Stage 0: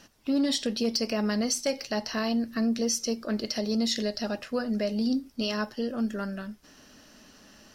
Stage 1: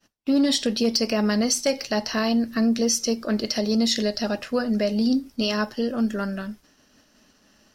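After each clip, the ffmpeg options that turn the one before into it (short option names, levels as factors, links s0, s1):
-af "agate=range=0.0224:threshold=0.00562:ratio=3:detection=peak,volume=1.88"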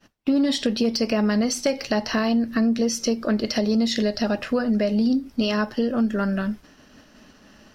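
-af "bass=f=250:g=2,treble=f=4000:g=-8,acompressor=threshold=0.0282:ratio=2.5,volume=2.66"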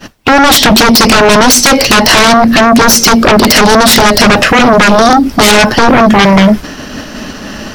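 -af "aeval=exprs='0.335*sin(PI/2*6.31*val(0)/0.335)':c=same,volume=2.51"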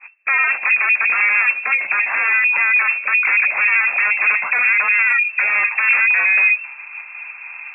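-af "lowpass=f=2300:t=q:w=0.5098,lowpass=f=2300:t=q:w=0.6013,lowpass=f=2300:t=q:w=0.9,lowpass=f=2300:t=q:w=2.563,afreqshift=-2700,aderivative"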